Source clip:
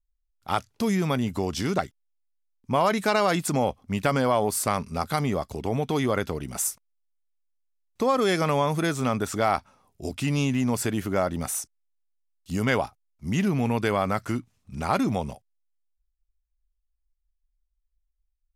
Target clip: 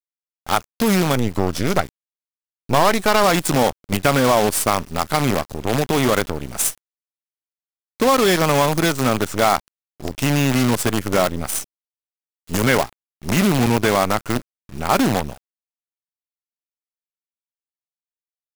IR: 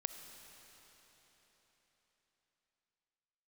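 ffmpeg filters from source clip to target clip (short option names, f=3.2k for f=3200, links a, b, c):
-filter_complex "[0:a]asettb=1/sr,asplit=3[a][b][c];[a]atrim=end=1.154[d];[b]atrim=start=1.15:end=3.24,asetpts=PTS-STARTPTS,afade=t=in:d=0.004:c=qsin,afade=t=out:st=2.086:d=0.004:c=qsin,aeval=exprs='0.335*(cos(1*acos(clip(val(0)/0.335,-1,1)))-cos(1*PI/2))+0.00596*(cos(2*acos(clip(val(0)/0.335,-1,1)))-cos(2*PI/2))+0.0335*(cos(6*acos(clip(val(0)/0.335,-1,1)))-cos(6*PI/2))':c=same[e];[c]atrim=start=3.236[f];[d][e]acrossfade=d=0.004:c1=hsin:c2=qsin[g];[g][f]acrossfade=d=0.004:c1=qsin:c2=hsin,acrusher=bits=5:dc=4:mix=0:aa=0.000001,volume=6.5dB"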